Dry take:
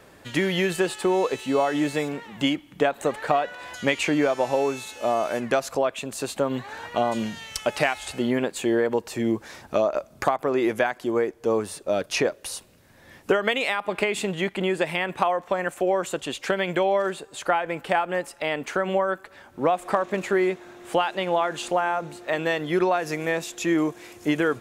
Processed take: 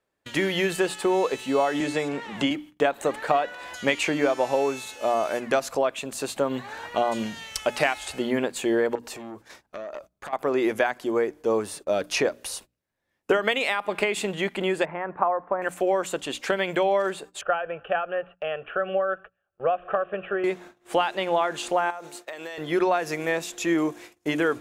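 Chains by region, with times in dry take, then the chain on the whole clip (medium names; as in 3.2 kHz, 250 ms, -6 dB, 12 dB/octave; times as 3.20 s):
1.80–2.51 s: low-pass 9.2 kHz + three bands compressed up and down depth 70%
8.95–10.33 s: compression 8:1, threshold -30 dBFS + transformer saturation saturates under 1.9 kHz
14.85–15.62 s: low-pass 1.4 kHz 24 dB/octave + tilt shelf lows -3 dB, about 880 Hz
17.41–20.44 s: steep low-pass 3 kHz 72 dB/octave + static phaser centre 1.4 kHz, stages 8
21.90–22.58 s: tone controls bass -12 dB, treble +7 dB + compression 16:1, threshold -31 dBFS
whole clip: gate -41 dBFS, range -28 dB; peaking EQ 120 Hz -4 dB 1.6 oct; hum notches 60/120/180/240/300 Hz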